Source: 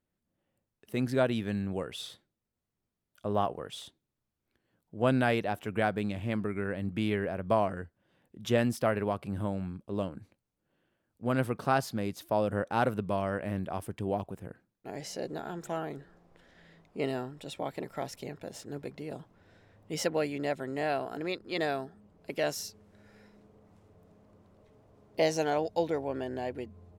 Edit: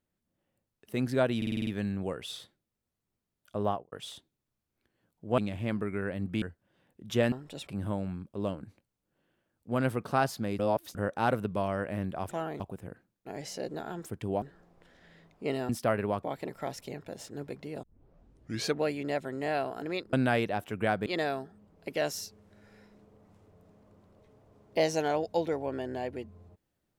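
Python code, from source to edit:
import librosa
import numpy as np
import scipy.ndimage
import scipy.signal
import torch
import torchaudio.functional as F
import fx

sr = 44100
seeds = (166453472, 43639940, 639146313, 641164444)

y = fx.studio_fade_out(x, sr, start_s=3.33, length_s=0.29)
y = fx.edit(y, sr, fx.stutter(start_s=1.37, slice_s=0.05, count=7),
    fx.move(start_s=5.08, length_s=0.93, to_s=21.48),
    fx.cut(start_s=7.05, length_s=0.72),
    fx.swap(start_s=8.67, length_s=0.54, other_s=17.23, other_length_s=0.35),
    fx.reverse_span(start_s=12.13, length_s=0.36),
    fx.swap(start_s=13.83, length_s=0.36, other_s=15.65, other_length_s=0.31),
    fx.tape_start(start_s=19.18, length_s=1.01), tone=tone)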